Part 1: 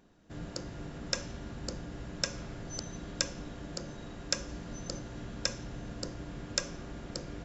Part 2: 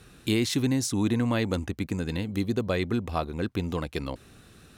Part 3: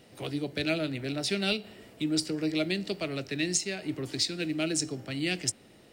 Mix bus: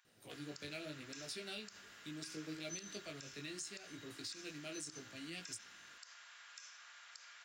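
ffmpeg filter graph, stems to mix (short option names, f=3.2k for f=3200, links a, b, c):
-filter_complex "[0:a]alimiter=limit=-14.5dB:level=0:latency=1:release=282,highpass=f=1.3k:w=0.5412,highpass=f=1.3k:w=1.3066,volume=-1.5dB[a];[2:a]aemphasis=mode=production:type=cd,flanger=delay=18:depth=2.9:speed=0.76,adelay=50,volume=-13.5dB[b];[a][b]amix=inputs=2:normalize=0,alimiter=level_in=11dB:limit=-24dB:level=0:latency=1:release=78,volume=-11dB,volume=0dB"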